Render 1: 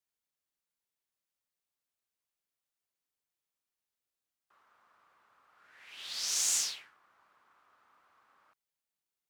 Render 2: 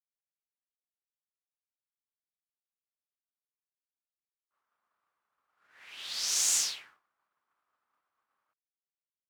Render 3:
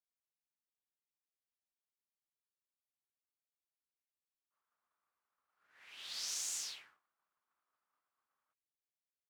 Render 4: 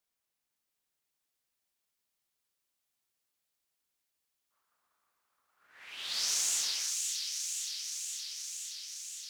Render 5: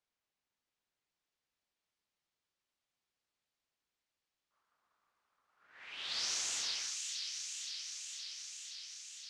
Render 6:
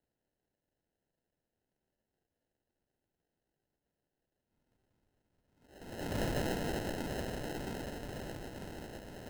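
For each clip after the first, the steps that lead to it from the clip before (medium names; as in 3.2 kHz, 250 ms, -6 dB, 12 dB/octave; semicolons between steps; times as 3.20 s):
expander -56 dBFS; trim +2.5 dB
compression, threshold -30 dBFS, peak gain reduction 7 dB; trim -7 dB
feedback echo behind a high-pass 520 ms, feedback 77%, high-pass 2.6 kHz, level -3.5 dB; trim +9 dB
distance through air 96 m
sample-and-hold 38×; trim +3 dB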